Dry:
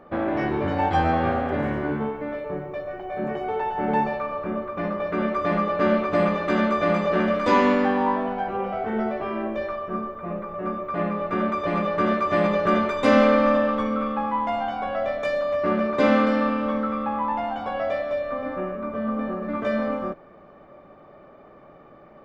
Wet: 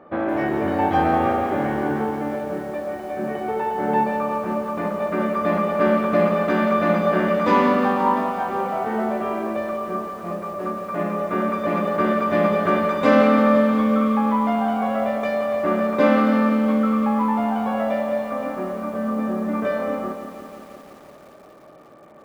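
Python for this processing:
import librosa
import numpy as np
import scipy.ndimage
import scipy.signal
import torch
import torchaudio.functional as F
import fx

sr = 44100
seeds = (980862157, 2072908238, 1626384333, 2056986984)

p1 = fx.tracing_dist(x, sr, depth_ms=0.024)
p2 = fx.highpass(p1, sr, hz=150.0, slope=6)
p3 = fx.high_shelf(p2, sr, hz=3700.0, db=-9.5)
p4 = fx.comb_fb(p3, sr, f0_hz=310.0, decay_s=0.45, harmonics='all', damping=0.0, mix_pct=50)
p5 = p4 + fx.echo_single(p4, sr, ms=223, db=-17.5, dry=0)
p6 = fx.echo_crushed(p5, sr, ms=173, feedback_pct=80, bits=9, wet_db=-10.0)
y = p6 * librosa.db_to_amplitude(8.0)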